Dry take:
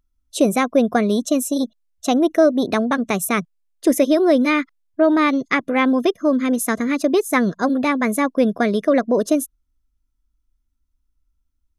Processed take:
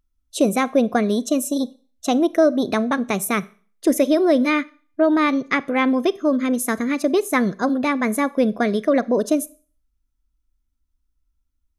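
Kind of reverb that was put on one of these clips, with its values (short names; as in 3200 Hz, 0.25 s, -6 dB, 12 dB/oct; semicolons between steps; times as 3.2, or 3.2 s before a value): Schroeder reverb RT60 0.41 s, combs from 29 ms, DRR 19.5 dB; gain -1.5 dB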